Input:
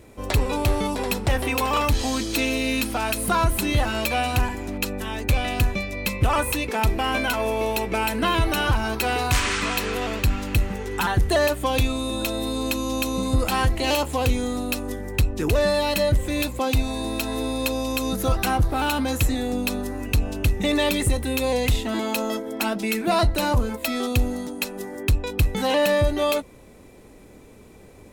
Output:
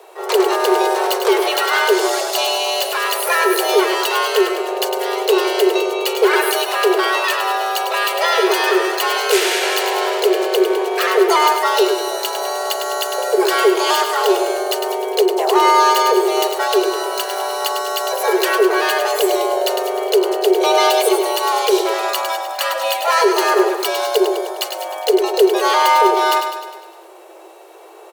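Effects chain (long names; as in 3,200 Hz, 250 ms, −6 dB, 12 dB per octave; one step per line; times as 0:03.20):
repeating echo 102 ms, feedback 56%, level −7 dB
pitch-shifted copies added +7 semitones −4 dB
frequency shifter +330 Hz
level +3.5 dB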